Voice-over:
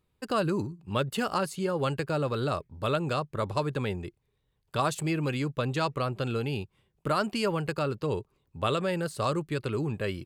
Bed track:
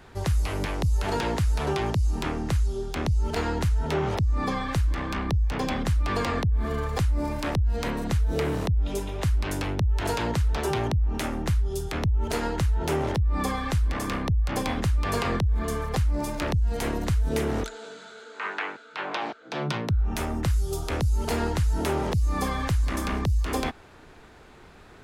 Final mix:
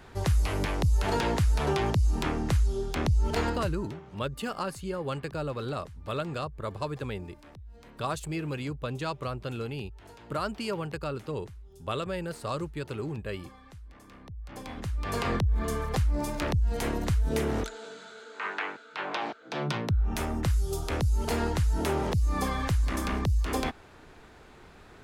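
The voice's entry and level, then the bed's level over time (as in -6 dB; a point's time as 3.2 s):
3.25 s, -4.5 dB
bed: 3.45 s -0.5 dB
4.06 s -23.5 dB
14.07 s -23.5 dB
15.29 s -2 dB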